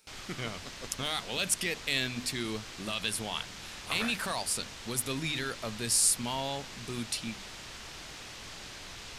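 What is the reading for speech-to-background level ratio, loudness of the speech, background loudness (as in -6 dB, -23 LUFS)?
11.5 dB, -32.0 LUFS, -43.5 LUFS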